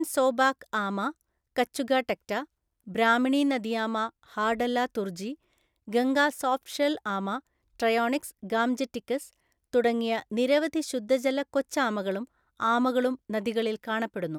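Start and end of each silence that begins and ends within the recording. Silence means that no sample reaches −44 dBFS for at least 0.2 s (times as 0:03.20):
0:01.12–0:01.56
0:02.45–0:02.87
0:05.34–0:05.88
0:07.39–0:07.80
0:09.28–0:09.73
0:12.25–0:12.60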